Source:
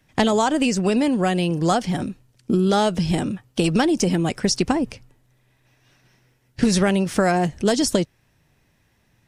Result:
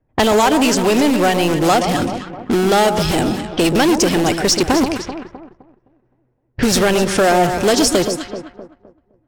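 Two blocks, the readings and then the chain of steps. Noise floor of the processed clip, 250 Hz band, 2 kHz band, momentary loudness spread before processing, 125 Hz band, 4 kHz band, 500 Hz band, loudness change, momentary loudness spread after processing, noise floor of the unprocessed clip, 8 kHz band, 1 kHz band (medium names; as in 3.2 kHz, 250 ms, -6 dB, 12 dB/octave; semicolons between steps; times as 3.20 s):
-64 dBFS, +3.5 dB, +8.0 dB, 7 LU, +1.0 dB, +8.0 dB, +7.0 dB, +5.5 dB, 9 LU, -64 dBFS, +8.0 dB, +7.5 dB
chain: low-pass 10 kHz; in parallel at -11 dB: integer overflow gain 17 dB; on the sum: peaking EQ 180 Hz -9.5 dB 0.81 oct; on a send: echo whose repeats swap between lows and highs 129 ms, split 1.1 kHz, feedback 69%, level -8 dB; on the sum: waveshaping leveller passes 2; level-controlled noise filter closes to 680 Hz, open at -16 dBFS; trim +1 dB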